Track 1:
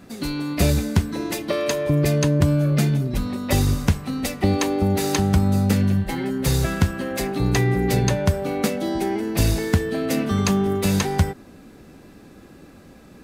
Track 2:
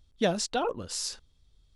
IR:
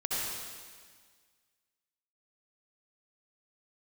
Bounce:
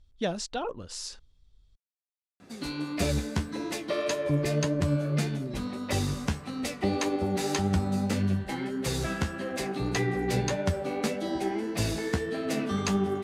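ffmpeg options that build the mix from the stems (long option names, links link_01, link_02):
-filter_complex "[0:a]highpass=frequency=230:poles=1,acontrast=85,flanger=delay=9.3:depth=7.3:regen=41:speed=1.7:shape=triangular,adelay=2400,volume=-8.5dB[link_01];[1:a]volume=-4dB[link_02];[link_01][link_02]amix=inputs=2:normalize=0,lowpass=9300,lowshelf=frequency=63:gain=8.5"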